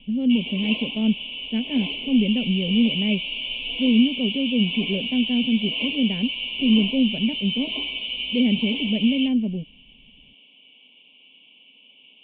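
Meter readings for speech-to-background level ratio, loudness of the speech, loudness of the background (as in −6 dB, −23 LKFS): 4.0 dB, −23.0 LKFS, −27.0 LKFS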